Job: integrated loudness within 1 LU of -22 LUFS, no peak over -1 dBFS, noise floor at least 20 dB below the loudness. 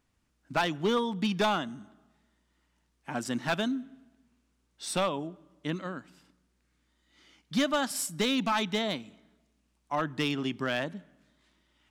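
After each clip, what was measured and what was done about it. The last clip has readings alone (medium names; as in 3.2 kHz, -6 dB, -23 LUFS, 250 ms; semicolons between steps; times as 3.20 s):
clipped samples 0.4%; clipping level -20.5 dBFS; loudness -31.0 LUFS; peak level -20.5 dBFS; loudness target -22.0 LUFS
-> clip repair -20.5 dBFS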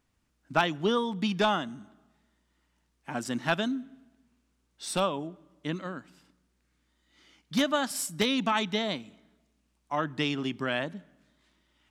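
clipped samples 0.0%; loudness -30.0 LUFS; peak level -11.5 dBFS; loudness target -22.0 LUFS
-> trim +8 dB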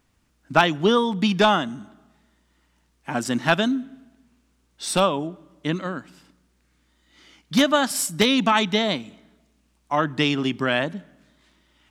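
loudness -22.0 LUFS; peak level -3.5 dBFS; noise floor -66 dBFS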